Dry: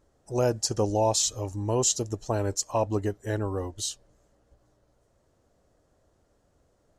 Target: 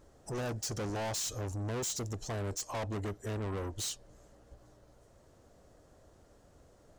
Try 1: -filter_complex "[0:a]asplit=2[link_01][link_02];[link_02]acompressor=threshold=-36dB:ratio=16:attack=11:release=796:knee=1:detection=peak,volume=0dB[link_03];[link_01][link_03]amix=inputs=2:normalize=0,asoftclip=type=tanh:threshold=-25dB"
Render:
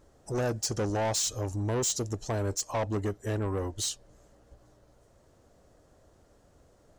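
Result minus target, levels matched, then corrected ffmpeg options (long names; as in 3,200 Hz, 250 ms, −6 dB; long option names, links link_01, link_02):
soft clipping: distortion −5 dB
-filter_complex "[0:a]asplit=2[link_01][link_02];[link_02]acompressor=threshold=-36dB:ratio=16:attack=11:release=796:knee=1:detection=peak,volume=0dB[link_03];[link_01][link_03]amix=inputs=2:normalize=0,asoftclip=type=tanh:threshold=-34dB"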